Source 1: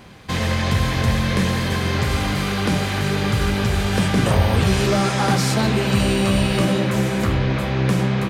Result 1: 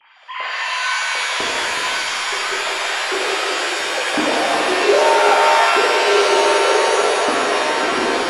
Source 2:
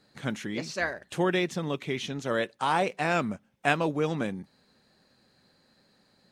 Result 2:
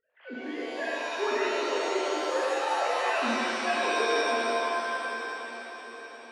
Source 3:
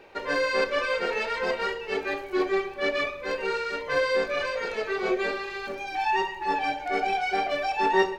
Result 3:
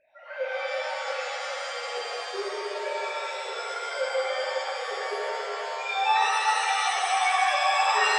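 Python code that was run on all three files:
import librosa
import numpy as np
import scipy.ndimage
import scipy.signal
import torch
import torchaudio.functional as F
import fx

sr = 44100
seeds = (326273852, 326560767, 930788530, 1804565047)

y = fx.sine_speech(x, sr)
y = fx.echo_alternate(y, sr, ms=370, hz=1800.0, feedback_pct=73, wet_db=-9.5)
y = fx.rev_shimmer(y, sr, seeds[0], rt60_s=2.3, semitones=7, shimmer_db=-2, drr_db=-6.0)
y = y * librosa.db_to_amplitude(-9.0)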